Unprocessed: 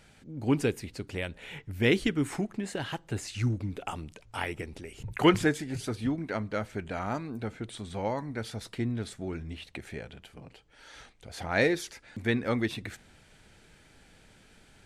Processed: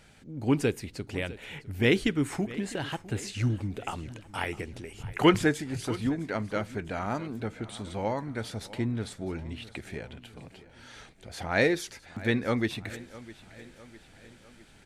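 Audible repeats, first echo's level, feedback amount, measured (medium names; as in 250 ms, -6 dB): 3, -18.0 dB, 52%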